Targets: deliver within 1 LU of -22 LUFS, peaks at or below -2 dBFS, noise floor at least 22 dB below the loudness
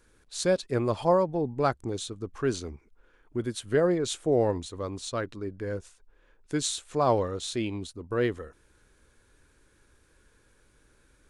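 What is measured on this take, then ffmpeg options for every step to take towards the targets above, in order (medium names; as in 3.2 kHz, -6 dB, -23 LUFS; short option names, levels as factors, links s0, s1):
loudness -29.0 LUFS; peak level -11.0 dBFS; loudness target -22.0 LUFS
-> -af "volume=2.24"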